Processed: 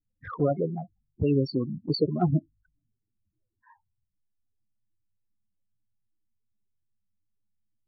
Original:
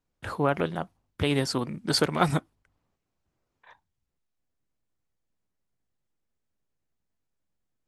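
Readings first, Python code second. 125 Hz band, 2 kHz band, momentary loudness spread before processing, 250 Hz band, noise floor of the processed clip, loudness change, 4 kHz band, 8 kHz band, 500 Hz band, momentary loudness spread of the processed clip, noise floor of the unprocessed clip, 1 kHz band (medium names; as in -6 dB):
+2.5 dB, under -15 dB, 11 LU, +2.0 dB, -81 dBFS, 0.0 dB, -8.0 dB, under -40 dB, +0.5 dB, 12 LU, -81 dBFS, -6.5 dB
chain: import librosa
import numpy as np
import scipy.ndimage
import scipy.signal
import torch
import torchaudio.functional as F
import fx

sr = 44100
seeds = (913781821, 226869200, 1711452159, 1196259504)

y = fx.spec_topn(x, sr, count=8)
y = fx.env_flanger(y, sr, rest_ms=9.7, full_db=-25.5)
y = y * 10.0 ** (3.5 / 20.0)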